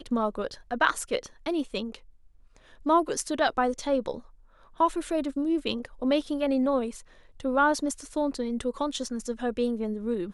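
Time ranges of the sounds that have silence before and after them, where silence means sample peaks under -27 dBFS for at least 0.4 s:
2.86–4.15 s
4.80–6.88 s

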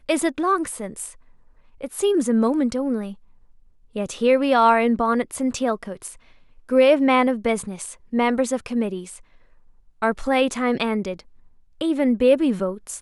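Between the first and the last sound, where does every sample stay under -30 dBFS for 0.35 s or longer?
1.09–1.81 s
3.12–3.96 s
6.12–6.70 s
9.16–10.02 s
11.19–11.81 s

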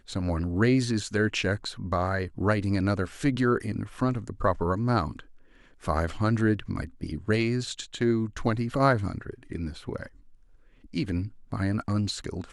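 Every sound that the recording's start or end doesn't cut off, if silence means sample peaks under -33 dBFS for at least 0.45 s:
5.86–10.06 s

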